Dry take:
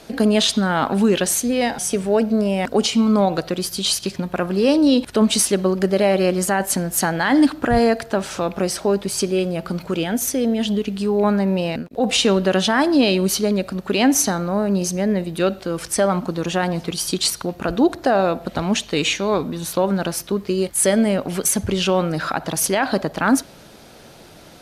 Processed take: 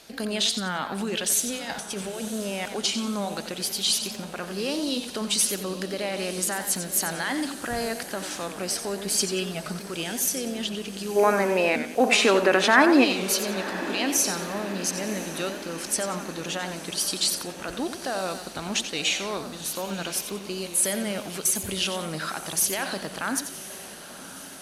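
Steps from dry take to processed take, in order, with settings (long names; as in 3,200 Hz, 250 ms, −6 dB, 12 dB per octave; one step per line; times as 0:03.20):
brickwall limiter −10 dBFS, peak gain reduction 3.5 dB
tilt shelving filter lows −6 dB, about 1,200 Hz
0:01.54–0:02.28: compressor whose output falls as the input rises −25 dBFS, ratio −0.5
0:09.02–0:09.79: comb filter 4.7 ms, depth 92%
0:11.16–0:13.04: gain on a spectral selection 230–2,700 Hz +12 dB
on a send: feedback delay with all-pass diffusion 1,032 ms, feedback 61%, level −14 dB
on the sum: feedback echo with a swinging delay time 91 ms, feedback 35%, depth 145 cents, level −10 dB
level −7.5 dB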